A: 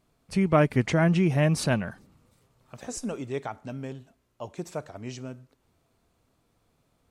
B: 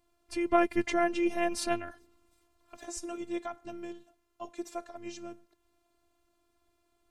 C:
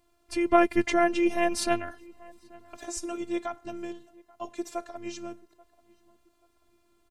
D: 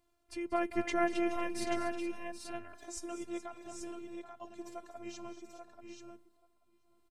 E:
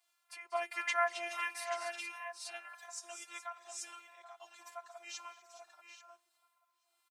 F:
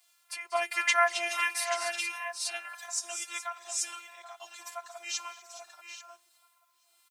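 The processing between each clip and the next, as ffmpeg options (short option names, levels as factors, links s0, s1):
-af "afftfilt=real='hypot(re,im)*cos(PI*b)':imag='0':win_size=512:overlap=0.75"
-filter_complex "[0:a]asplit=2[s0][s1];[s1]adelay=834,lowpass=f=1600:p=1,volume=0.0708,asplit=2[s2][s3];[s3]adelay=834,lowpass=f=1600:p=1,volume=0.37[s4];[s0][s2][s4]amix=inputs=3:normalize=0,volume=1.68"
-af "tremolo=f=0.97:d=0.47,aecho=1:1:190|241|423|781|834:0.168|0.224|0.178|0.282|0.473,volume=0.422"
-filter_complex "[0:a]highpass=f=860:w=0.5412,highpass=f=860:w=1.3066,asplit=2[s0][s1];[s1]adelay=5.7,afreqshift=-1.6[s2];[s0][s2]amix=inputs=2:normalize=1,volume=2.24"
-af "highshelf=f=2300:g=8.5,volume=1.78"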